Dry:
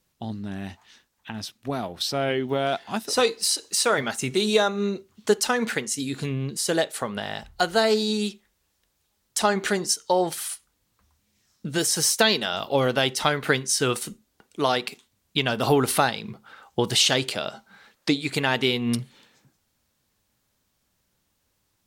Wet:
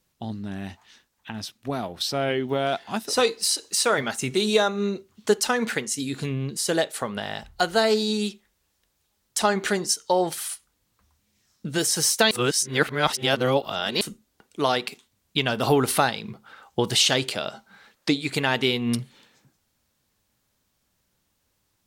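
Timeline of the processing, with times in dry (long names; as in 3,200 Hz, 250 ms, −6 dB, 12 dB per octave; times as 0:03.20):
0:12.31–0:14.01: reverse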